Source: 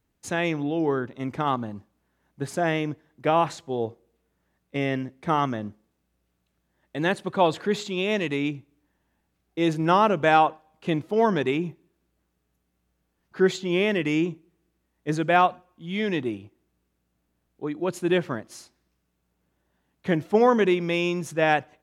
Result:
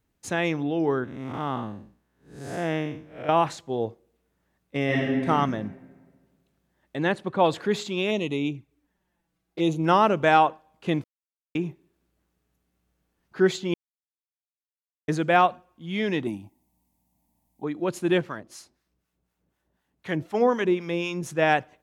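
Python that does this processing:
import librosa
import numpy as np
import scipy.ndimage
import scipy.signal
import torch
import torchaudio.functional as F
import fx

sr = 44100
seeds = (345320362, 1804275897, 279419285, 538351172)

y = fx.spec_blur(x, sr, span_ms=201.0, at=(1.04, 3.29))
y = fx.reverb_throw(y, sr, start_s=4.85, length_s=0.43, rt60_s=1.6, drr_db=-4.5)
y = fx.high_shelf(y, sr, hz=fx.line((6.96, 6100.0), (7.43, 3500.0)), db=-10.0, at=(6.96, 7.43), fade=0.02)
y = fx.env_flanger(y, sr, rest_ms=6.2, full_db=-24.0, at=(8.1, 9.83), fade=0.02)
y = fx.curve_eq(y, sr, hz=(140.0, 260.0, 440.0, 630.0, 920.0, 1400.0, 2000.0, 2900.0, 5700.0, 12000.0), db=(0, 5, -14, 1, 10, -22, -3, -6, 2, 10), at=(16.27, 17.64))
y = fx.harmonic_tremolo(y, sr, hz=4.0, depth_pct=70, crossover_hz=780.0, at=(18.21, 21.23))
y = fx.edit(y, sr, fx.silence(start_s=11.04, length_s=0.51),
    fx.silence(start_s=13.74, length_s=1.34), tone=tone)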